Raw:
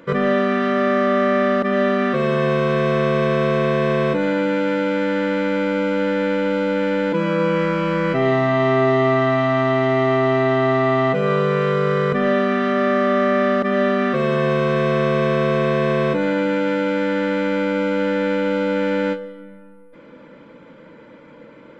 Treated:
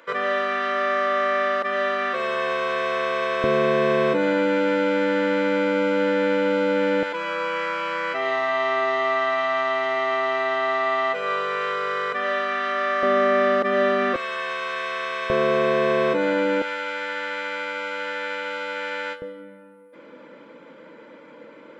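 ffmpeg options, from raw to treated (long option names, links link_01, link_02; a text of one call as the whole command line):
ffmpeg -i in.wav -af "asetnsamples=nb_out_samples=441:pad=0,asendcmd='3.44 highpass f 260;7.03 highpass f 820;13.03 highpass f 360;14.16 highpass f 1200;15.3 highpass f 320;16.62 highpass f 1000;19.22 highpass f 280',highpass=710" out.wav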